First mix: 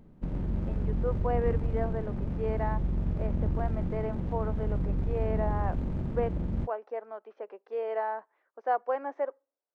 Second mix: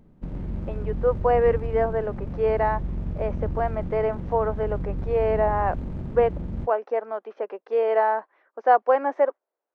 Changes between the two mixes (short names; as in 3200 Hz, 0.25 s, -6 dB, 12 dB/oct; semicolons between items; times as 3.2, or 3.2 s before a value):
speech +11.0 dB; reverb: off